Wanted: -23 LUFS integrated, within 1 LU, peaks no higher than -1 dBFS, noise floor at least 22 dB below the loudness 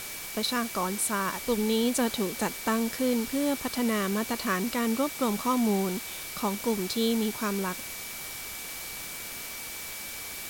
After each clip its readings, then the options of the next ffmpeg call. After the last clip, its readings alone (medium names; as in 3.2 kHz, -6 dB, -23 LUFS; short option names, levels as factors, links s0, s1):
steady tone 2.3 kHz; tone level -44 dBFS; noise floor -39 dBFS; noise floor target -51 dBFS; loudness -29.0 LUFS; peak level -14.5 dBFS; loudness target -23.0 LUFS
-> -af "bandreject=f=2300:w=30"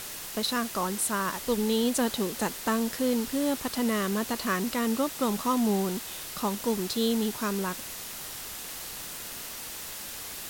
steady tone not found; noise floor -39 dBFS; noise floor target -52 dBFS
-> -af "afftdn=nr=13:nf=-39"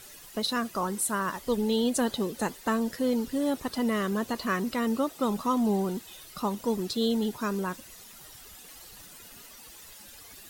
noise floor -49 dBFS; noise floor target -51 dBFS
-> -af "afftdn=nr=6:nf=-49"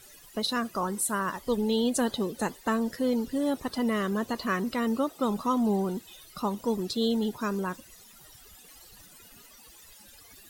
noise floor -53 dBFS; loudness -29.0 LUFS; peak level -15.0 dBFS; loudness target -23.0 LUFS
-> -af "volume=2"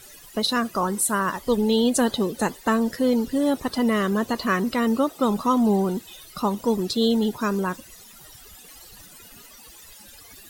loudness -23.0 LUFS; peak level -9.0 dBFS; noise floor -47 dBFS